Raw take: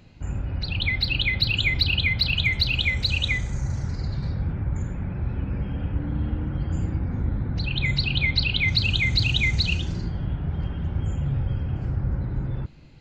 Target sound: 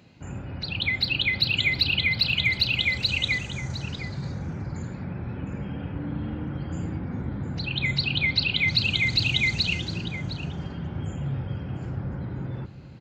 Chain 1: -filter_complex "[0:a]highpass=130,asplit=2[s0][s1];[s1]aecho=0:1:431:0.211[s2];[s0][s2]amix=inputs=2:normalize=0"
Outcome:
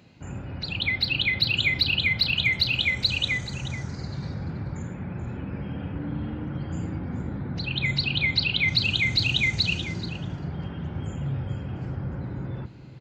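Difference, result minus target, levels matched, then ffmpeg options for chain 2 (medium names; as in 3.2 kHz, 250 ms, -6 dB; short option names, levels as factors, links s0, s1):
echo 277 ms early
-filter_complex "[0:a]highpass=130,asplit=2[s0][s1];[s1]aecho=0:1:708:0.211[s2];[s0][s2]amix=inputs=2:normalize=0"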